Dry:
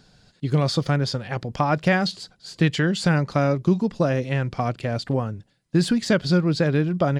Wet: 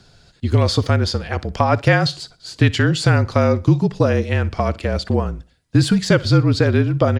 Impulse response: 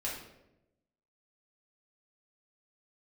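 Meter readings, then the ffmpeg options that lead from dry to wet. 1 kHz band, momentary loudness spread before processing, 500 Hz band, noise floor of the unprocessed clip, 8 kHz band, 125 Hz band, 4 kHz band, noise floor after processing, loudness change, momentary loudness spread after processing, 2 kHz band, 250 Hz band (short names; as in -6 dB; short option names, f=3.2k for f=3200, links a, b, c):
+4.0 dB, 8 LU, +4.5 dB, -62 dBFS, +5.0 dB, +6.5 dB, +5.0 dB, -55 dBFS, +5.0 dB, 8 LU, +4.5 dB, +2.5 dB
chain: -af "aecho=1:1:61|122|183:0.0891|0.0312|0.0109,afreqshift=-40,volume=5dB"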